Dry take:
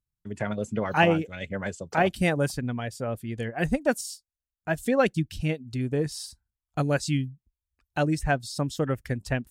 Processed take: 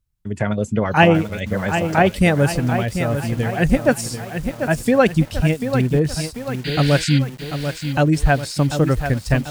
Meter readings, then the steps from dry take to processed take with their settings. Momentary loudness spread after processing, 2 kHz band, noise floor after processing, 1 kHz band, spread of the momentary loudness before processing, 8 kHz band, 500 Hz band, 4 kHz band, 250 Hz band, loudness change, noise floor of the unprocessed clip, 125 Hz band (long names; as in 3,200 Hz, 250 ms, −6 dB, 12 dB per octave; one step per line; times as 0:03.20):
10 LU, +8.0 dB, −38 dBFS, +8.0 dB, 11 LU, +7.5 dB, +8.0 dB, +9.5 dB, +9.5 dB, +9.0 dB, below −85 dBFS, +11.0 dB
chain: sound drawn into the spectrogram noise, 0:06.64–0:07.19, 1,400–4,900 Hz −36 dBFS
low-shelf EQ 110 Hz +9.5 dB
feedback echo at a low word length 741 ms, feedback 55%, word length 7 bits, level −8 dB
level +7 dB